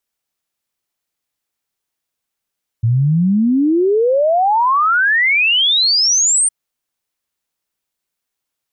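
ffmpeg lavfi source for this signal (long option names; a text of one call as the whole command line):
ffmpeg -f lavfi -i "aevalsrc='0.299*clip(min(t,3.66-t)/0.01,0,1)*sin(2*PI*110*3.66/log(9100/110)*(exp(log(9100/110)*t/3.66)-1))':duration=3.66:sample_rate=44100" out.wav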